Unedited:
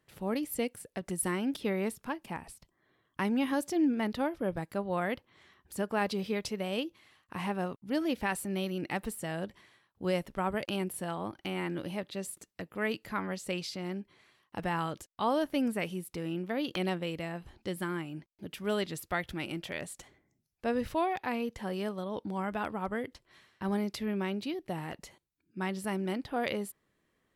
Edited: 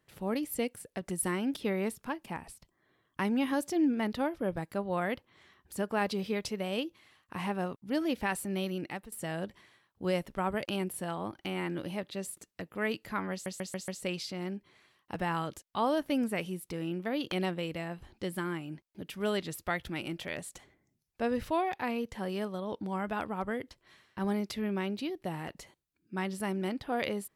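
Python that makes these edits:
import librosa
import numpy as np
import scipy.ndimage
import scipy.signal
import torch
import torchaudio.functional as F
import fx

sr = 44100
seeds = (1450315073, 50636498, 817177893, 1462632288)

y = fx.edit(x, sr, fx.fade_out_to(start_s=8.74, length_s=0.38, floor_db=-17.0),
    fx.stutter(start_s=13.32, slice_s=0.14, count=5), tone=tone)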